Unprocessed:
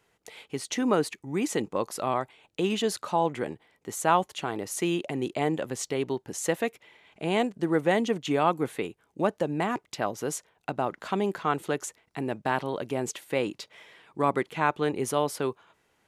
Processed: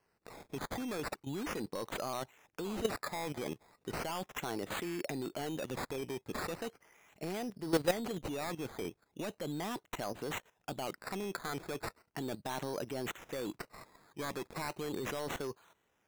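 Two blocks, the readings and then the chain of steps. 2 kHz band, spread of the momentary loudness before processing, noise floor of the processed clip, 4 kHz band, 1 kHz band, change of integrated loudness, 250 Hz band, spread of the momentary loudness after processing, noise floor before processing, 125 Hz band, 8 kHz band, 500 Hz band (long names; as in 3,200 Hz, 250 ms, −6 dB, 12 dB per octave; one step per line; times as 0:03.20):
−8.5 dB, 11 LU, −78 dBFS, −7.0 dB, −13.0 dB, −10.5 dB, −10.0 dB, 7 LU, −72 dBFS, −9.0 dB, −10.5 dB, −10.5 dB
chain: sample-and-hold swept by an LFO 12×, swing 60% 0.37 Hz
soft clipping −22.5 dBFS, distortion −10 dB
output level in coarse steps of 13 dB
level +1 dB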